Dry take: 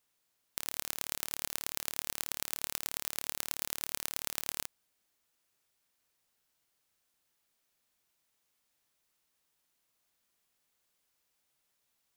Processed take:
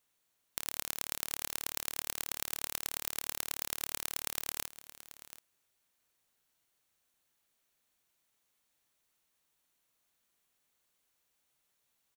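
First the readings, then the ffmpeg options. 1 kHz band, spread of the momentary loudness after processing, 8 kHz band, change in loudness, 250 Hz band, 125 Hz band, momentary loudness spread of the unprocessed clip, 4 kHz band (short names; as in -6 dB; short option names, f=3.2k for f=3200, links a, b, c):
0.0 dB, 15 LU, 0.0 dB, 0.0 dB, -0.5 dB, 0.0 dB, 2 LU, -0.5 dB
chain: -af "bandreject=f=5k:w=12,aecho=1:1:731:0.178"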